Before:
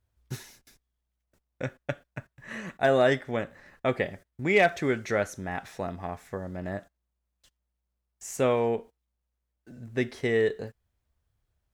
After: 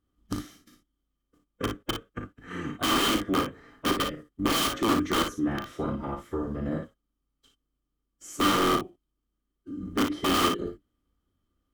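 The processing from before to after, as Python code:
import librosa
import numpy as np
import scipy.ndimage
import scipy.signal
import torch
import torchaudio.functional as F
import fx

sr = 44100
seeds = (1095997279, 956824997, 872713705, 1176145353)

p1 = fx.octave_divider(x, sr, octaves=1, level_db=-3.0)
p2 = fx.pitch_keep_formants(p1, sr, semitones=-4.0)
p3 = (np.mod(10.0 ** (21.5 / 20.0) * p2 + 1.0, 2.0) - 1.0) / 10.0 ** (21.5 / 20.0)
p4 = fx.small_body(p3, sr, hz=(280.0, 1200.0, 3100.0), ring_ms=30, db=16)
p5 = p4 + fx.room_early_taps(p4, sr, ms=(37, 57), db=(-8.5, -7.0), dry=0)
y = F.gain(torch.from_numpy(p5), -4.0).numpy()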